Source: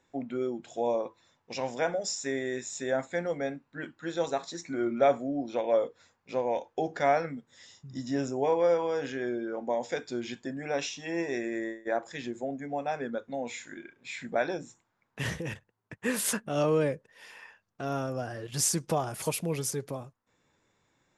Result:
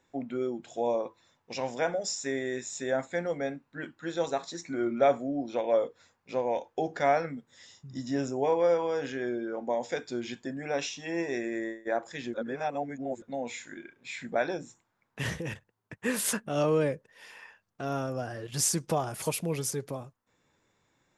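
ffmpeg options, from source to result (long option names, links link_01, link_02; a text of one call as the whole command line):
ffmpeg -i in.wav -filter_complex "[0:a]asplit=3[link_01][link_02][link_03];[link_01]atrim=end=12.342[link_04];[link_02]atrim=start=12.338:end=13.222,asetpts=PTS-STARTPTS,areverse[link_05];[link_03]atrim=start=13.218[link_06];[link_04][link_05]acrossfade=duration=0.004:curve1=hsin:curve2=hsin[link_07];[link_07][link_06]acrossfade=duration=0.004:curve1=hsin:curve2=hsin" out.wav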